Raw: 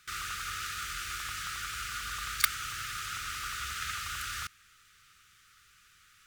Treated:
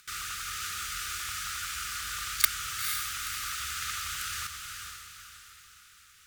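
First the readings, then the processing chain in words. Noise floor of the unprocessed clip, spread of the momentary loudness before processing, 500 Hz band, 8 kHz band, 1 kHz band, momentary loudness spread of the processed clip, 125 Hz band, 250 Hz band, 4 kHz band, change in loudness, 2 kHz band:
-62 dBFS, 7 LU, n/a, +5.0 dB, -0.5 dB, 19 LU, -1.0 dB, -1.5 dB, +2.5 dB, +2.5 dB, +0.5 dB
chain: high shelf 3700 Hz +7.5 dB; on a send: diffused feedback echo 0.476 s, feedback 42%, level -5.5 dB; on the sum: upward compressor, threshold -55 dBFS; gain -2.5 dB

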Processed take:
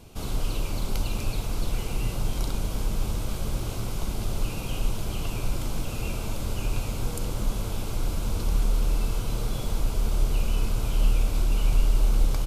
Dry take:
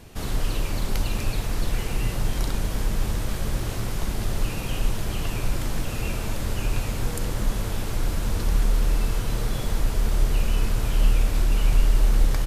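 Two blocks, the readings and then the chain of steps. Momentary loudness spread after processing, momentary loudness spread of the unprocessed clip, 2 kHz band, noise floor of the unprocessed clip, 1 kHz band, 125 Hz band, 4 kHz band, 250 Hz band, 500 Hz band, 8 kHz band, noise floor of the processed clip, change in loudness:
7 LU, 6 LU, -6.0 dB, -30 dBFS, -3.0 dB, -2.5 dB, -3.0 dB, -2.5 dB, -2.5 dB, -2.5 dB, -33 dBFS, -2.5 dB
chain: bell 1800 Hz -14.5 dB 0.25 oct; gain -2.5 dB

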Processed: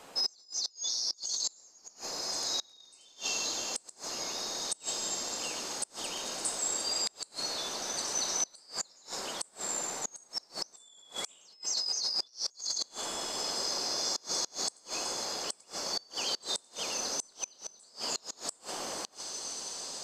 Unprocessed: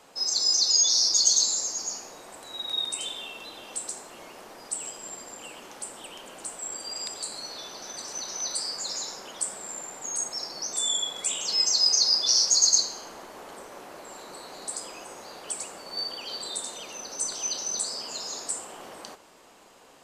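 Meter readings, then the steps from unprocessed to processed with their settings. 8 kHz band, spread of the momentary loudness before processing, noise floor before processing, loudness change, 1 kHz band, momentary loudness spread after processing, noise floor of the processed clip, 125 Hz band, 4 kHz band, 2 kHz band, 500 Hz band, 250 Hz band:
-7.5 dB, 23 LU, -53 dBFS, -8.5 dB, 0.0 dB, 9 LU, -62 dBFS, n/a, -7.0 dB, 0.0 dB, 0.0 dB, 0.0 dB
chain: diffused feedback echo 1.999 s, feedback 62%, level -13.5 dB; negative-ratio compressor -29 dBFS, ratio -1; flipped gate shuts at -20 dBFS, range -29 dB

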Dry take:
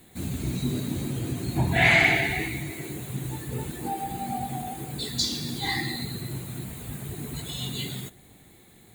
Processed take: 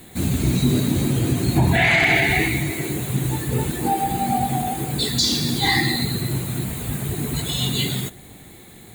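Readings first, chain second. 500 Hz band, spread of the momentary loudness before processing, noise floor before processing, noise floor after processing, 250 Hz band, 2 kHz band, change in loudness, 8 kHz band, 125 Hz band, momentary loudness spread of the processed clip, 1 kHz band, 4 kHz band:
+7.0 dB, 15 LU, -54 dBFS, -44 dBFS, +9.0 dB, +4.0 dB, +7.0 dB, +9.0 dB, +9.0 dB, 10 LU, +8.0 dB, +8.0 dB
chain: maximiser +17 dB; gain -7 dB

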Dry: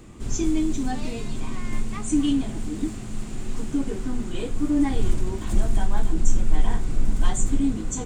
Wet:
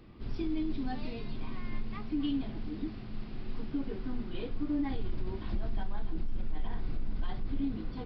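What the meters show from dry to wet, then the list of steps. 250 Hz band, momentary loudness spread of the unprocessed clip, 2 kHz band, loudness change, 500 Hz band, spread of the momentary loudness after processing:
-10.0 dB, 10 LU, -10.0 dB, -10.5 dB, -9.5 dB, 8 LU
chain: limiter -15.5 dBFS, peak gain reduction 11 dB; downsampling 11025 Hz; gain -8.5 dB

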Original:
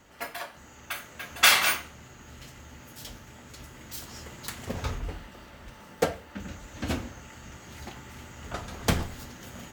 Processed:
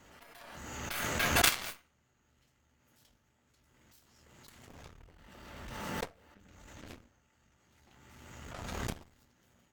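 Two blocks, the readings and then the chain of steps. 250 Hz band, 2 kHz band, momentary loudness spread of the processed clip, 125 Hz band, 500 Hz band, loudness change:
-7.5 dB, -8.0 dB, 25 LU, -8.5 dB, -8.0 dB, -5.0 dB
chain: added harmonics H 3 -10 dB, 4 -12 dB, 6 -16 dB, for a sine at -3 dBFS; backwards sustainer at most 28 dB/s

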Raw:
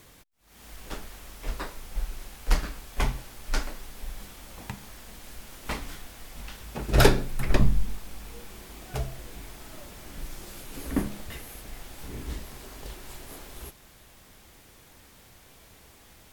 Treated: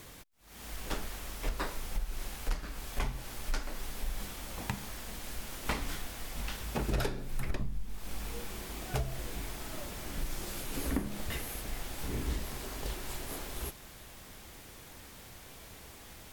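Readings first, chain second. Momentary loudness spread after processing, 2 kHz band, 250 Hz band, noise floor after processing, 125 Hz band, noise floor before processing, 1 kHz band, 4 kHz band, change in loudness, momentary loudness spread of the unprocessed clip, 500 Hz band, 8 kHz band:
13 LU, -5.5 dB, -6.0 dB, -51 dBFS, -7.5 dB, -54 dBFS, -5.5 dB, -4.0 dB, -7.0 dB, 25 LU, -9.0 dB, -1.5 dB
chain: compressor 16:1, threshold -31 dBFS, peak gain reduction 21 dB; gain +3 dB

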